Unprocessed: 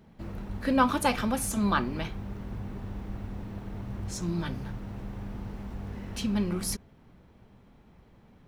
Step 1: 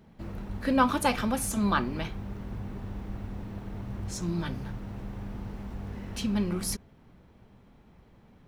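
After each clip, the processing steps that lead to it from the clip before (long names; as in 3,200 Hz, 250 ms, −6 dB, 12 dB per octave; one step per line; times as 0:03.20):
no processing that can be heard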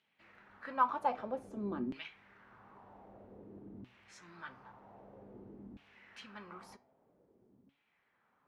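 auto-filter band-pass saw down 0.52 Hz 250–3,000 Hz
flanger 1.4 Hz, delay 6.6 ms, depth 1.6 ms, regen +85%
level +1.5 dB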